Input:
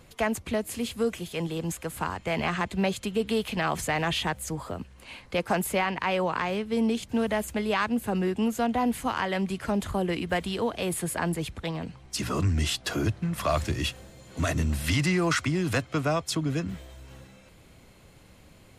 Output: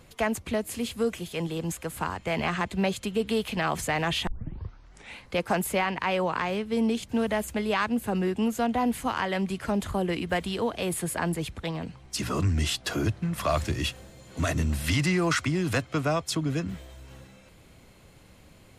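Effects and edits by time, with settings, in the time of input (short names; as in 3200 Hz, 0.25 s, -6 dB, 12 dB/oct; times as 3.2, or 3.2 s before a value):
4.27 tape start 0.93 s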